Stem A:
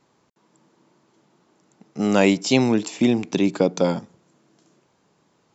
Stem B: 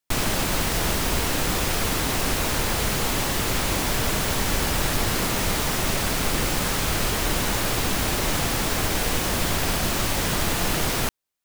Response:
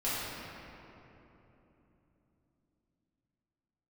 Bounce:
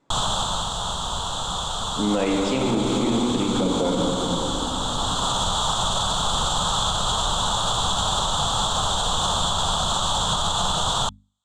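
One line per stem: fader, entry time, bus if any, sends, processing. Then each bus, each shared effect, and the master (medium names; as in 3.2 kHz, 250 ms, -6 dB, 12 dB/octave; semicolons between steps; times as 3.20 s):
+0.5 dB, 0.00 s, send -6 dB, low-pass 1.7 kHz 6 dB/octave; flange 0.49 Hz, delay 3.3 ms, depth 4.1 ms, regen +64%
+1.5 dB, 0.00 s, no send, FFT filter 190 Hz 0 dB, 310 Hz -13 dB, 880 Hz +9 dB, 1.3 kHz +7 dB, 2.2 kHz -27 dB, 3.4 kHz +14 dB, 5.1 kHz -7 dB, 7.5 kHz +7 dB, 13 kHz -28 dB; auto duck -7 dB, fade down 0.75 s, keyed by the first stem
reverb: on, RT60 3.3 s, pre-delay 4 ms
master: hum notches 50/100/150/200/250 Hz; peak limiter -13 dBFS, peak gain reduction 10 dB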